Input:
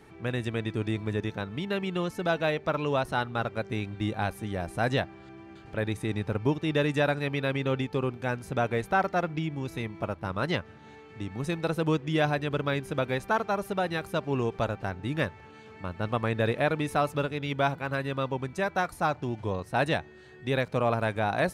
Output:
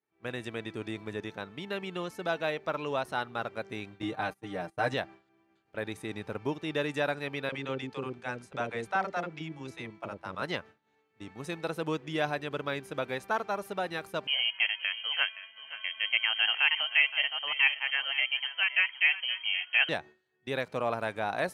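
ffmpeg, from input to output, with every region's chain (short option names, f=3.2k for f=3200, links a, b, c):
-filter_complex "[0:a]asettb=1/sr,asplit=3[a][b][c];[a]atrim=end=4.024[d];[b]atrim=start=4.02:end=4.94,asetpts=PTS-STARTPTS,afade=t=in:d=0.004:c=qsin,afade=t=out:st=0.916:d=0.004:c=qsin,agate=range=-23dB:threshold=-38dB:ratio=16:release=100:detection=peak,highshelf=f=4.8k:g=-5.5,aecho=1:1:6.6:0.96,atrim=end_sample=40572[e];[c]atrim=start=4.936[f];[d][e]acrossfade=d=0.004:c1=hsin:c2=qsin[g];[g][f]acrossfade=d=0.004:c1=qsin:c2=hsin,asettb=1/sr,asplit=3[h][i][j];[h]atrim=end=7.494[k];[i]atrim=start=7.49:end=10.42,asetpts=PTS-STARTPTS,afade=t=in:d=0.004:c=qsin,afade=t=out:st=2.926:d=0.004:c=qsin,lowpass=f=9.7k:w=0.5412,lowpass=f=9.7k:w=1.3066,acrossover=split=540[l][m];[l]adelay=30[n];[n][m]amix=inputs=2:normalize=0,atrim=end_sample=129213[o];[j]atrim=start=10.416[p];[k][o]acrossfade=d=0.004:c1=hsin:c2=qsin[q];[q][p]acrossfade=d=0.004:c1=qsin:c2=hsin,asettb=1/sr,asplit=3[r][s][t];[r]atrim=end=14.274[u];[s]atrim=start=14.27:end=19.89,asetpts=PTS-STARTPTS,afade=t=in:d=0.004:c=qsin,afade=t=out:st=5.616:d=0.004:c=qsin,equalizer=f=1.1k:t=o:w=1.5:g=7,lowpass=f=2.8k:t=q:w=0.5098,lowpass=f=2.8k:t=q:w=0.6013,lowpass=f=2.8k:t=q:w=0.9,lowpass=f=2.8k:t=q:w=2.563,afreqshift=-3300,aecho=1:1:520:0.2,atrim=end_sample=247842[v];[t]atrim=start=19.886[w];[u][v]acrossfade=d=0.004:c1=hsin:c2=qsin[x];[x][w]acrossfade=d=0.004:c1=qsin:c2=hsin,highpass=f=340:p=1,agate=range=-33dB:threshold=-39dB:ratio=3:detection=peak,volume=-3dB"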